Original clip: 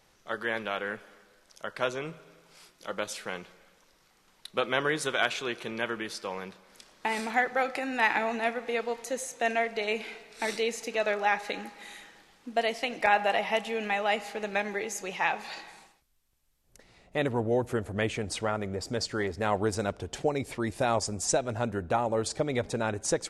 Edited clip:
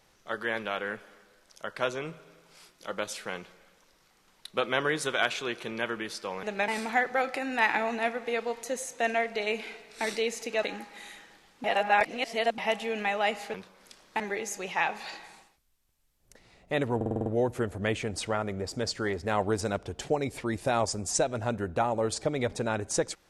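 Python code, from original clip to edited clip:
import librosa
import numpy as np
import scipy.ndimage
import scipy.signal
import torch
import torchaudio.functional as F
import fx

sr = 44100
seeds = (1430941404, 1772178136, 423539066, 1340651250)

y = fx.edit(x, sr, fx.swap(start_s=6.43, length_s=0.66, other_s=14.39, other_length_s=0.25),
    fx.cut(start_s=11.04, length_s=0.44),
    fx.reverse_span(start_s=12.49, length_s=0.94),
    fx.stutter(start_s=17.4, slice_s=0.05, count=7), tone=tone)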